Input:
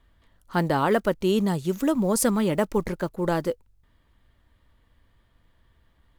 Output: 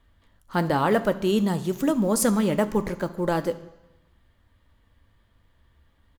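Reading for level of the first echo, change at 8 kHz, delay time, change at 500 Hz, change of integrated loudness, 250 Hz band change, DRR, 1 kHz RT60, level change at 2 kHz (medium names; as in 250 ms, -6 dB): -21.5 dB, +0.5 dB, 72 ms, 0.0 dB, +0.5 dB, +1.0 dB, 11.0 dB, 1.1 s, 0.0 dB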